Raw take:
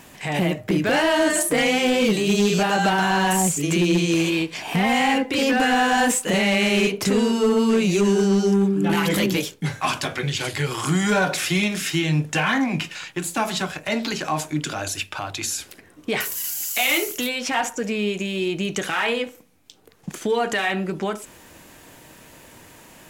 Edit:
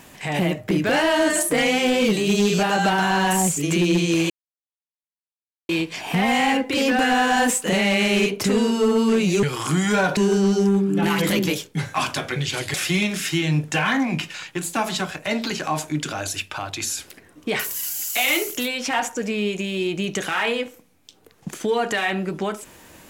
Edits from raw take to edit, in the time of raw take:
4.3 insert silence 1.39 s
10.61–11.35 move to 8.04

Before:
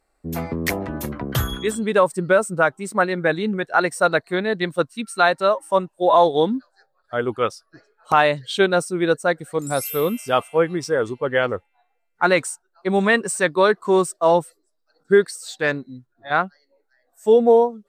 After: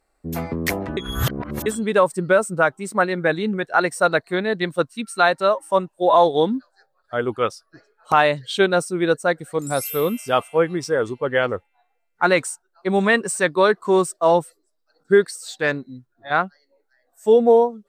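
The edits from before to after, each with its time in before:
0.97–1.66 reverse

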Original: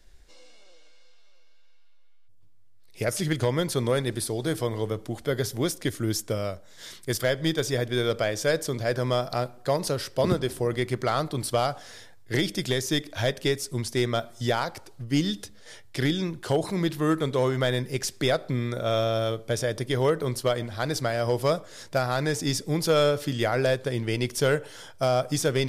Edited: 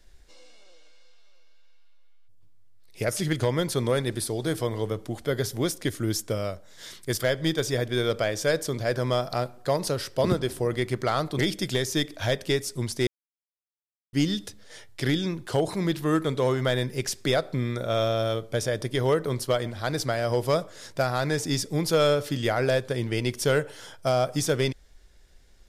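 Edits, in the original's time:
11.39–12.35 cut
14.03–15.09 mute

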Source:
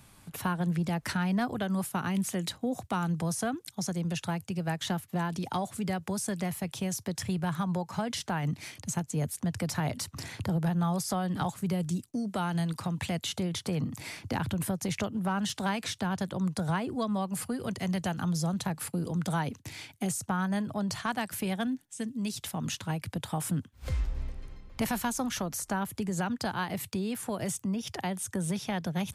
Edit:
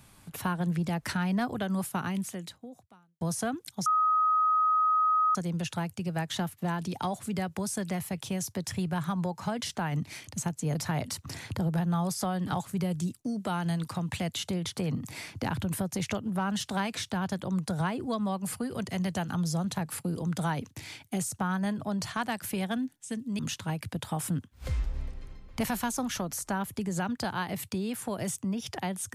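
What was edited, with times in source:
2.01–3.21 fade out quadratic
3.86 add tone 1260 Hz -21.5 dBFS 1.49 s
9.26–9.64 cut
22.28–22.6 cut

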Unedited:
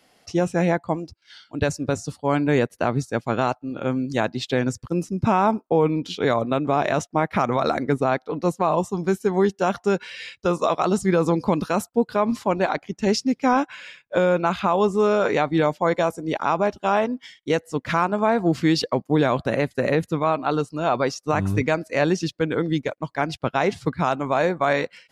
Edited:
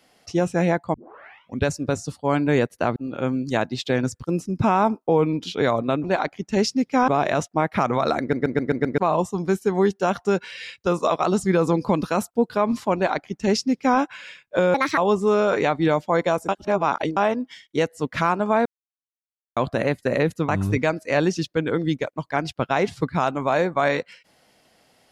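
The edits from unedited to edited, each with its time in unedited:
0.94 tape start 0.72 s
2.96–3.59 cut
7.79 stutter in place 0.13 s, 6 plays
12.54–13.58 copy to 6.67
14.33–14.7 speed 157%
16.21–16.89 reverse
18.38–19.29 mute
20.21–21.33 cut

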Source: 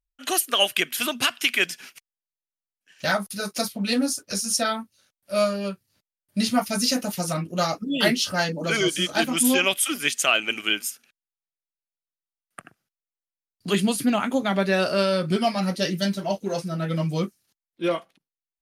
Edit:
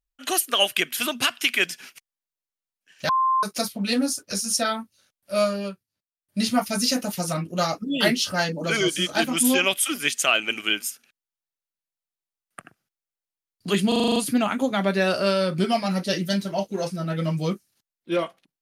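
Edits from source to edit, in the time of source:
3.09–3.43 bleep 1050 Hz -17.5 dBFS
5.6–6.43 dip -17 dB, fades 0.26 s
13.88 stutter 0.04 s, 8 plays

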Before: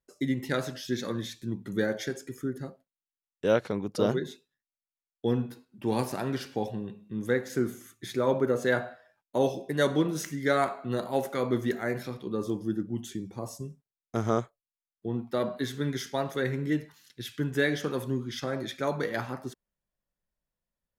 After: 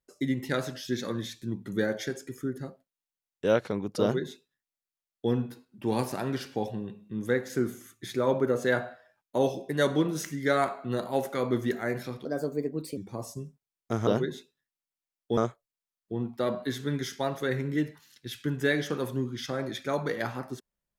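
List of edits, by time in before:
4.01–5.31 copy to 14.31
12.25–13.21 speed 133%

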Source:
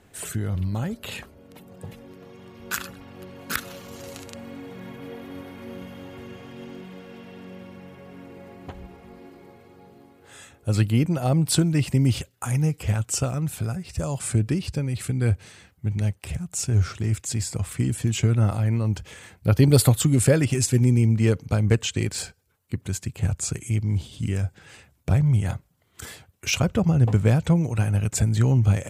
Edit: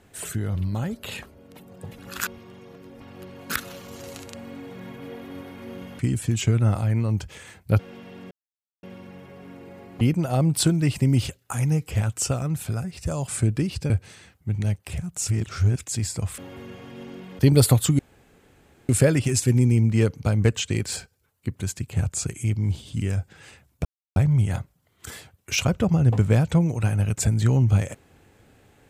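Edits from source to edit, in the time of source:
1.98–3 reverse
5.99–7 swap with 17.75–19.55
7.52 insert silence 0.52 s
8.7–10.93 cut
14.82–15.27 cut
16.65–17.16 reverse
20.15 insert room tone 0.90 s
25.11 insert silence 0.31 s

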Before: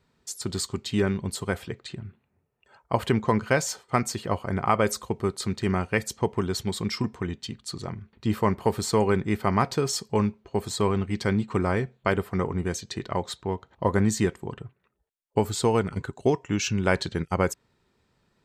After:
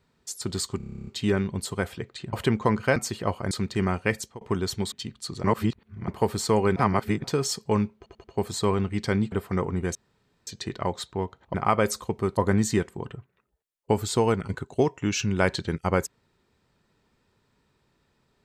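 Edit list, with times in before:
0.77 stutter 0.03 s, 11 plays
2.03–2.96 cut
3.59–4 cut
4.55–5.38 move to 13.84
6.03–6.28 fade out
6.79–7.36 cut
7.88–8.52 reverse
9.2–9.68 reverse
10.41 stutter 0.09 s, 4 plays
11.49–12.14 cut
12.77 insert room tone 0.52 s

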